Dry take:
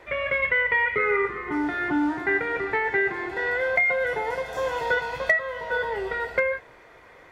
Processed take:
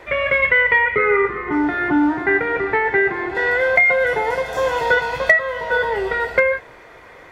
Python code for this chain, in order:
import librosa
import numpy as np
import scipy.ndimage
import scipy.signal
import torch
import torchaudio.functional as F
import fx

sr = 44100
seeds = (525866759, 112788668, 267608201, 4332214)

y = fx.high_shelf(x, sr, hz=4200.0, db=-11.5, at=(0.78, 3.35))
y = y * 10.0 ** (7.5 / 20.0)